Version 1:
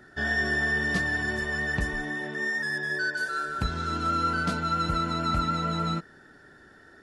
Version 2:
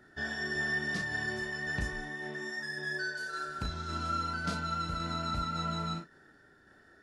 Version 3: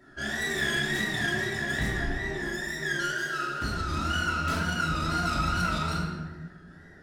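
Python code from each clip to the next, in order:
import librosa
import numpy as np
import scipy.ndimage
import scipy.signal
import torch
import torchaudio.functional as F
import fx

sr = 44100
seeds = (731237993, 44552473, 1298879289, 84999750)

y1 = fx.tremolo_shape(x, sr, shape='saw_down', hz=1.8, depth_pct=35)
y1 = fx.dynamic_eq(y1, sr, hz=5400.0, q=1.3, threshold_db=-51.0, ratio=4.0, max_db=5)
y1 = fx.room_early_taps(y1, sr, ms=(35, 62), db=(-5.0, -16.5))
y1 = y1 * 10.0 ** (-7.0 / 20.0)
y2 = fx.self_delay(y1, sr, depth_ms=0.18)
y2 = fx.wow_flutter(y2, sr, seeds[0], rate_hz=2.1, depth_cents=130.0)
y2 = fx.room_shoebox(y2, sr, seeds[1], volume_m3=900.0, walls='mixed', distance_m=2.9)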